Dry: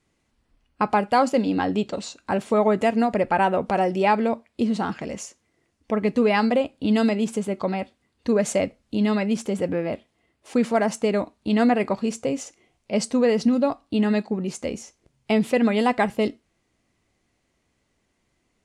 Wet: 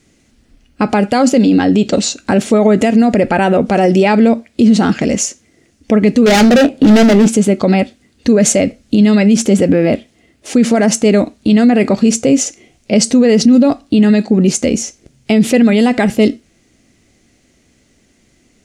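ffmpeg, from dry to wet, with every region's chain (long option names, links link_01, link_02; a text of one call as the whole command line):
ffmpeg -i in.wav -filter_complex "[0:a]asettb=1/sr,asplit=3[link_01][link_02][link_03];[link_01]atrim=end=6.264[link_04];[link_02]atrim=start=6.26:end=7.28,asetpts=PTS-STARTPTS,afade=type=in:duration=0.004:curve=qsin,afade=type=out:start_time=1.016:duration=0.004:curve=qsin,equalizer=frequency=590:width=0.35:gain=11,asoftclip=type=hard:threshold=-18dB,asplit=2[link_05][link_06];[link_06]adelay=25,volume=-13dB[link_07];[link_05][link_07]amix=inputs=2:normalize=0,atrim=end_sample=44982[link_08];[link_03]atrim=start=7.276[link_09];[link_04][link_08]acrossfade=duration=0.004:curve1=hsin:curve2=qsin[link_10];[link_10][link_09]acrossfade=duration=0.004:curve1=qsin:curve2=hsin,equalizer=frequency=250:width_type=o:width=0.67:gain=5,equalizer=frequency=1000:width_type=o:width=0.67:gain=-10,equalizer=frequency=6300:width_type=o:width=0.67:gain=5,alimiter=level_in=17dB:limit=-1dB:release=50:level=0:latency=1,volume=-1dB" out.wav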